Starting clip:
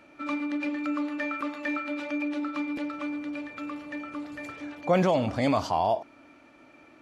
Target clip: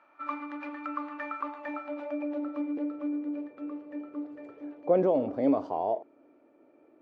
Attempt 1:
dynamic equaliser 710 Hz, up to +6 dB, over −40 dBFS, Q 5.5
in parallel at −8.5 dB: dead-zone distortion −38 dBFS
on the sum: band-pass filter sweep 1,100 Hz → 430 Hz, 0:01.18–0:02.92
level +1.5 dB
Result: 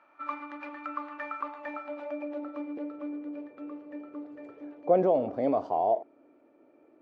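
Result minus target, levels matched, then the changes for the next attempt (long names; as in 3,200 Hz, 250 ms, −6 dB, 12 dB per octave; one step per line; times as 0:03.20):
250 Hz band −4.5 dB
change: dynamic equaliser 280 Hz, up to +6 dB, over −40 dBFS, Q 5.5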